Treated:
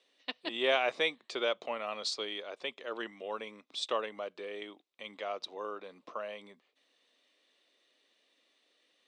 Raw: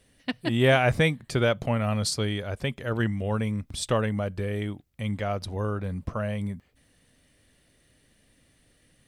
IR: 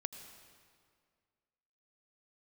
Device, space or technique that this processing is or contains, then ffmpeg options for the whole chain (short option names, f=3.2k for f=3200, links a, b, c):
phone speaker on a table: -af "highpass=f=350:w=0.5412,highpass=f=350:w=1.3066,equalizer=f=1.1k:t=q:w=4:g=5,equalizer=f=1.6k:t=q:w=4:g=-4,equalizer=f=2.6k:t=q:w=4:g=4,equalizer=f=3.7k:t=q:w=4:g=9,lowpass=f=6.7k:w=0.5412,lowpass=f=6.7k:w=1.3066,volume=-7.5dB"